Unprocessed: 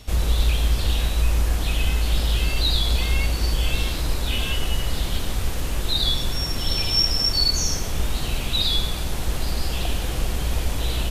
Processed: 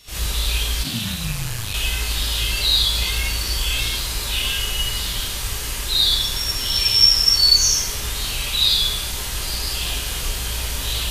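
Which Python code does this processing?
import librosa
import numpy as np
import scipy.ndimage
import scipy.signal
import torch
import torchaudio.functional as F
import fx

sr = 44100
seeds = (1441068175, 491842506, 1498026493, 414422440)

y = fx.tilt_shelf(x, sr, db=-8.0, hz=1200.0)
y = fx.rev_gated(y, sr, seeds[0], gate_ms=90, shape='rising', drr_db=-7.5)
y = fx.ring_mod(y, sr, carrier_hz=fx.line((0.83, 220.0), (1.73, 47.0)), at=(0.83, 1.73), fade=0.02)
y = F.gain(torch.from_numpy(y), -7.0).numpy()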